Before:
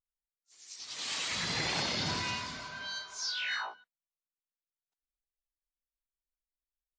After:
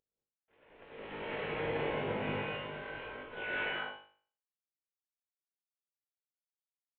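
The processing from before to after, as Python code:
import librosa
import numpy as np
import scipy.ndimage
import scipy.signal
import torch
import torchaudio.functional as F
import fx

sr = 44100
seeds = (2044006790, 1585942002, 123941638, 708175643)

y = fx.cvsd(x, sr, bps=16000)
y = fx.peak_eq(y, sr, hz=460.0, db=13.5, octaves=0.86)
y = fx.notch(y, sr, hz=1200.0, q=13.0)
y = fx.comb_fb(y, sr, f0_hz=51.0, decay_s=0.47, harmonics='all', damping=0.0, mix_pct=90)
y = fx.rev_gated(y, sr, seeds[0], gate_ms=240, shape='rising', drr_db=-4.5)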